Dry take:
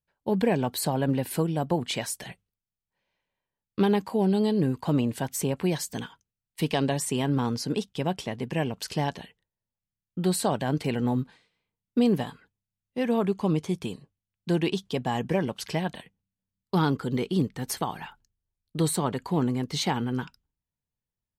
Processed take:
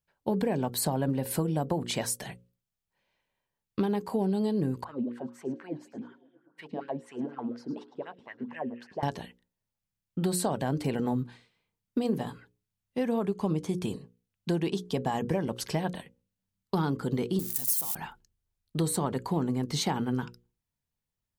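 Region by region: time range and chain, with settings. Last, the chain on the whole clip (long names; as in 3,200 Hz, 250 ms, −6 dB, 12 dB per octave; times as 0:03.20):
0:04.84–0:09.03: LFO wah 4.1 Hz 230–1,800 Hz, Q 4.9 + echo through a band-pass that steps 107 ms, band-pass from 5,000 Hz, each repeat −0.7 octaves, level −9.5 dB
0:17.39–0:17.95: spike at every zero crossing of −20 dBFS + first-order pre-emphasis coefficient 0.8
whole clip: mains-hum notches 60/120/180/240/300/360/420/480/540 Hz; dynamic equaliser 2,700 Hz, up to −6 dB, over −48 dBFS, Q 0.9; downward compressor, threshold −27 dBFS; level +2.5 dB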